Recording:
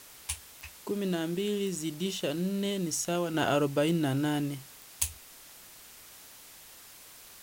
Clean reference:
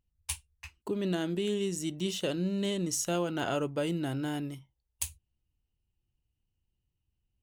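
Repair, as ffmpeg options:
ffmpeg -i in.wav -af "adeclick=threshold=4,afwtdn=0.0032,asetnsamples=nb_out_samples=441:pad=0,asendcmd='3.34 volume volume -4.5dB',volume=0dB" out.wav

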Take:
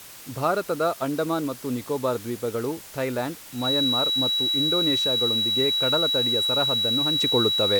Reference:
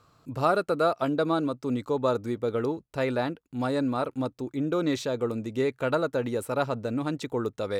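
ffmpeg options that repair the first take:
ffmpeg -i in.wav -af "bandreject=frequency=3900:width=30,afwtdn=0.0071,asetnsamples=nb_out_samples=441:pad=0,asendcmd='7.15 volume volume -6dB',volume=0dB" out.wav

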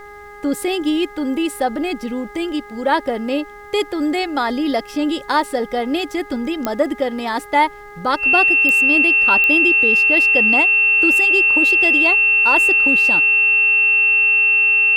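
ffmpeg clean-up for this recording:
ffmpeg -i in.wav -af "adeclick=threshold=4,bandreject=frequency=411.8:width_type=h:width=4,bandreject=frequency=823.6:width_type=h:width=4,bandreject=frequency=1235.4:width_type=h:width=4,bandreject=frequency=1647.2:width_type=h:width=4,bandreject=frequency=2059:width_type=h:width=4,bandreject=frequency=2700:width=30,agate=range=-21dB:threshold=-29dB" out.wav

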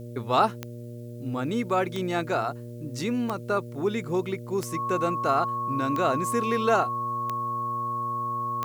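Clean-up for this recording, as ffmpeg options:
ffmpeg -i in.wav -af "adeclick=threshold=4,bandreject=frequency=119.3:width_type=h:width=4,bandreject=frequency=238.6:width_type=h:width=4,bandreject=frequency=357.9:width_type=h:width=4,bandreject=frequency=477.2:width_type=h:width=4,bandreject=frequency=596.5:width_type=h:width=4,bandreject=frequency=1100:width=30,agate=range=-21dB:threshold=-31dB" out.wav

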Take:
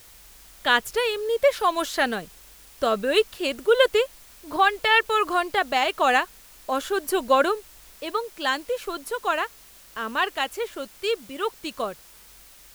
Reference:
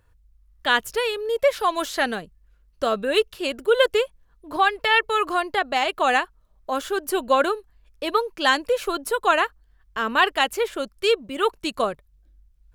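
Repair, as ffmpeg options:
ffmpeg -i in.wav -af "afwtdn=0.0032,asetnsamples=nb_out_samples=441:pad=0,asendcmd='7.95 volume volume 5.5dB',volume=0dB" out.wav

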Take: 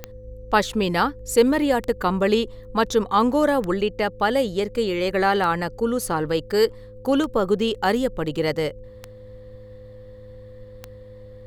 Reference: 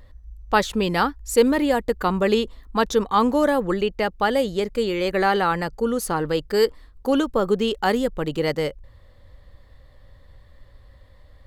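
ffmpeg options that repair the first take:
ffmpeg -i in.wav -af "adeclick=threshold=4,bandreject=frequency=106.1:width_type=h:width=4,bandreject=frequency=212.2:width_type=h:width=4,bandreject=frequency=318.3:width_type=h:width=4,bandreject=frequency=424.4:width_type=h:width=4,bandreject=frequency=530.5:width_type=h:width=4,bandreject=frequency=510:width=30" out.wav

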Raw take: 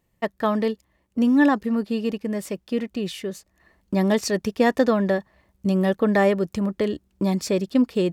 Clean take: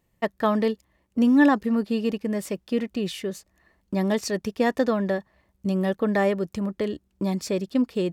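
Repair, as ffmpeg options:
ffmpeg -i in.wav -af "asetnsamples=nb_out_samples=441:pad=0,asendcmd='3.6 volume volume -3.5dB',volume=0dB" out.wav

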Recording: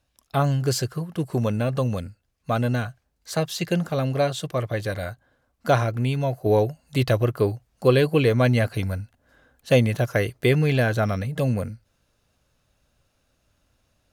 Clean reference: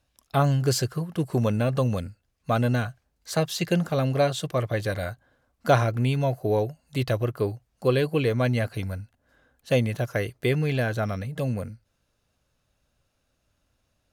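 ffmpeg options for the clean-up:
ffmpeg -i in.wav -af "asetnsamples=nb_out_samples=441:pad=0,asendcmd='6.46 volume volume -4.5dB',volume=0dB" out.wav

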